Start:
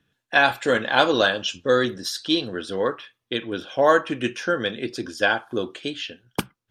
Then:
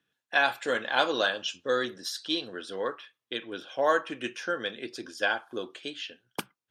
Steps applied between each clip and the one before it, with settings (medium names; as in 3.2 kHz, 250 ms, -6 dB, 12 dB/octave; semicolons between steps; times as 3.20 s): high-pass 410 Hz 6 dB/octave; trim -6 dB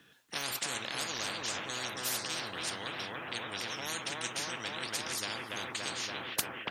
bucket-brigade echo 286 ms, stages 4096, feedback 66%, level -4 dB; spectrum-flattening compressor 10:1; trim -3 dB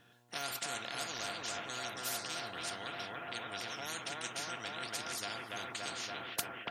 mains buzz 120 Hz, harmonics 9, -66 dBFS -4 dB/octave; small resonant body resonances 700/1400 Hz, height 12 dB, ringing for 100 ms; trim -4.5 dB